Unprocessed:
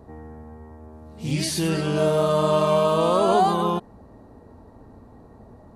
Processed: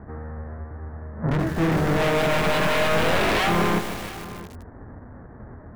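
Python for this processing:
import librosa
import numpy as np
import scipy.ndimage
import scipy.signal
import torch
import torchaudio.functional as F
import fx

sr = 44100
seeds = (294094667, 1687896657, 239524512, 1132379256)

y = fx.halfwave_hold(x, sr)
y = scipy.signal.sosfilt(scipy.signal.ellip(4, 1.0, 40, 1800.0, 'lowpass', fs=sr, output='sos'), y)
y = fx.peak_eq(y, sr, hz=100.0, db=3.5, octaves=1.5)
y = 10.0 ** (-17.5 / 20.0) * (np.abs((y / 10.0 ** (-17.5 / 20.0) + 3.0) % 4.0 - 2.0) - 1.0)
y = fx.doubler(y, sr, ms=24.0, db=-11.0)
y = y + 10.0 ** (-17.0 / 20.0) * np.pad(y, (int(673 * sr / 1000.0), 0))[:len(y)]
y = fx.echo_crushed(y, sr, ms=154, feedback_pct=80, bits=5, wet_db=-9.5)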